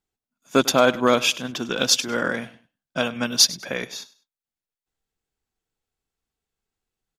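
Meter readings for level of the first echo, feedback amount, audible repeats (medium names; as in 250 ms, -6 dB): -19.0 dB, 27%, 2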